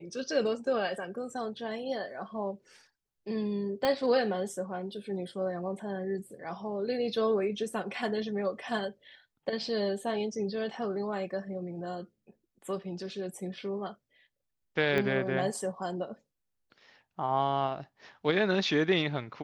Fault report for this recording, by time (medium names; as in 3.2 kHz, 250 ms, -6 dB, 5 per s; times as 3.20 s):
3.85 s: pop -15 dBFS
14.98 s: pop -17 dBFS